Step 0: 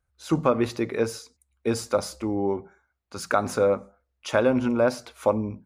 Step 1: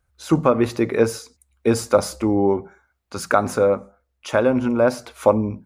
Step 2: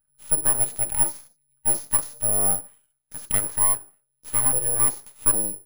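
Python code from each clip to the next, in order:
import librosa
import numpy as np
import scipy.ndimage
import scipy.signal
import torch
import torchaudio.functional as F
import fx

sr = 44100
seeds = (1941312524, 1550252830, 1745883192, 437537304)

y1 = fx.dynamic_eq(x, sr, hz=4200.0, q=0.77, threshold_db=-46.0, ratio=4.0, max_db=-4)
y1 = fx.rider(y1, sr, range_db=10, speed_s=0.5)
y1 = y1 * 10.0 ** (6.0 / 20.0)
y2 = (np.kron(scipy.signal.resample_poly(y1, 1, 4), np.eye(4)[0]) * 4)[:len(y1)]
y2 = np.abs(y2)
y2 = fx.hpss(y2, sr, part='percussive', gain_db=-6)
y2 = y2 * 10.0 ** (-8.5 / 20.0)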